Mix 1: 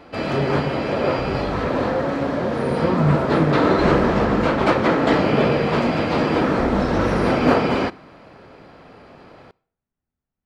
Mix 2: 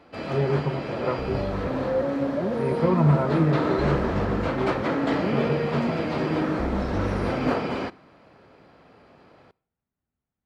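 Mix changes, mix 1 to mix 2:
first sound -8.5 dB; master: add high-pass 44 Hz

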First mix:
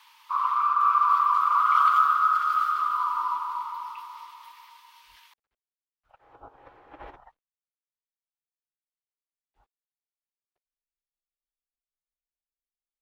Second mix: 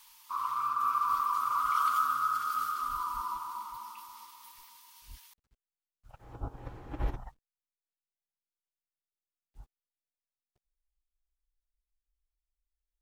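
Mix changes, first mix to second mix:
background -8.5 dB; master: remove three-band isolator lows -21 dB, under 410 Hz, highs -18 dB, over 3.7 kHz

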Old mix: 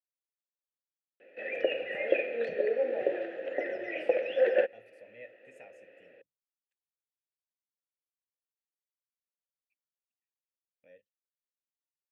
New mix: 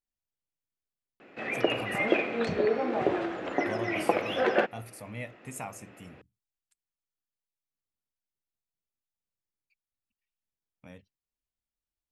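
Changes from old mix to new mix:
background -6.0 dB; master: remove vowel filter e

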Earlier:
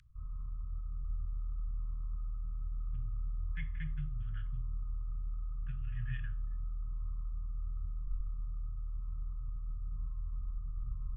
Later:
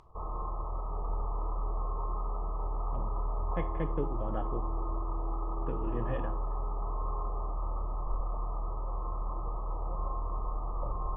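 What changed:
background: send +11.5 dB; master: remove Chebyshev band-stop 150–1500 Hz, order 5

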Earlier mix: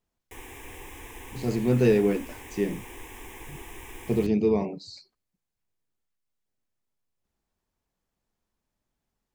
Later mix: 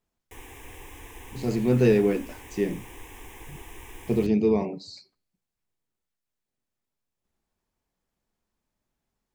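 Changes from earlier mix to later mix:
speech: send +9.0 dB; background: send off

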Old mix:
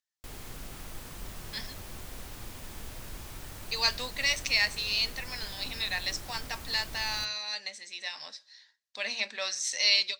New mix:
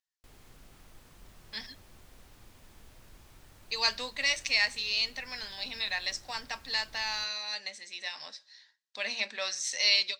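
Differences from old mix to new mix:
background -12.0 dB; master: add treble shelf 8.3 kHz -5 dB

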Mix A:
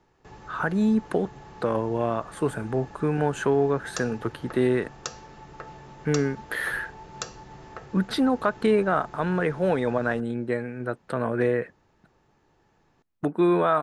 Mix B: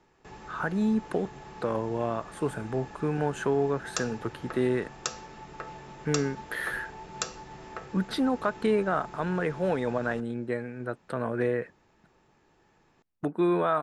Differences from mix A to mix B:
speech -4.0 dB; reverb: on, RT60 0.45 s

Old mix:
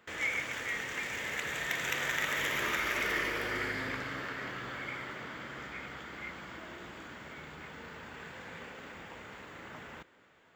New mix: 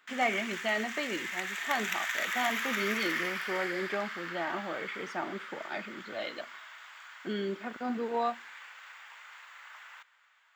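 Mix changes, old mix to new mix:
speech: remove Butterworth band-pass 2.2 kHz, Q 4.9; background: add high-pass 1 kHz 24 dB/octave

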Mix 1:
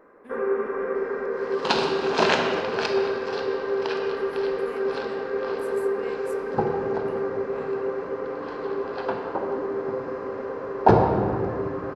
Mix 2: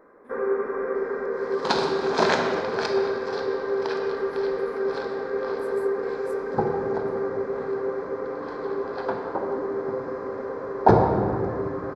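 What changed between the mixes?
speech -6.0 dB; master: add peaking EQ 2.8 kHz -13.5 dB 0.3 oct

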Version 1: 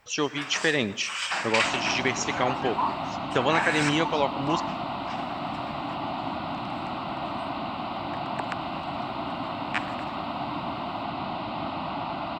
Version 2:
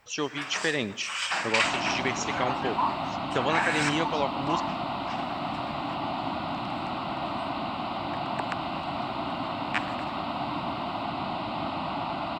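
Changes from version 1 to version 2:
speech -3.5 dB; second sound: remove distance through air 51 m

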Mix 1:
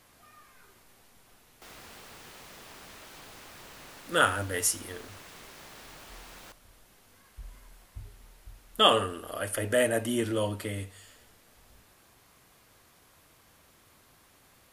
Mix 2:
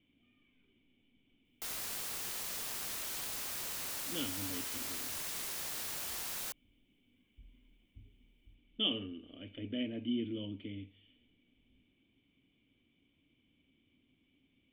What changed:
speech: add cascade formant filter i; master: remove low-pass 1.8 kHz 6 dB/octave

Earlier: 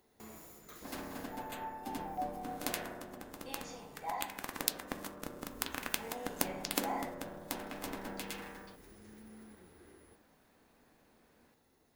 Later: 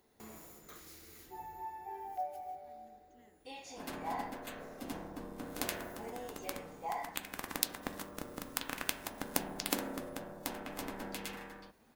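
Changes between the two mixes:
speech: add high-pass 240 Hz; second sound: entry +2.95 s

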